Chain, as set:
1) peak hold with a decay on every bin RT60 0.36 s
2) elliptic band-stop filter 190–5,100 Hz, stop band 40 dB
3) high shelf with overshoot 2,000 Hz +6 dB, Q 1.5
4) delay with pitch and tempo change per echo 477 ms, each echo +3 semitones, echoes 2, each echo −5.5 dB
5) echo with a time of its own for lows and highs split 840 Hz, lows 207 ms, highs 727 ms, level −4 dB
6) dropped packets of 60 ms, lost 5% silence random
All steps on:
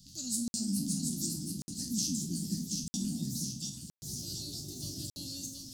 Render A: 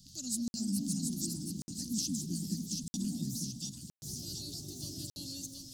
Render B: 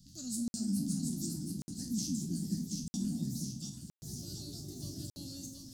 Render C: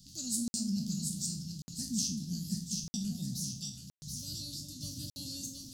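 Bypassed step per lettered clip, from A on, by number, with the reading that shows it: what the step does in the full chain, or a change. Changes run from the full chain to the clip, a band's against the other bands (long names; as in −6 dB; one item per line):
1, 8 kHz band −1.5 dB
3, 4 kHz band −7.0 dB
4, change in integrated loudness −1.0 LU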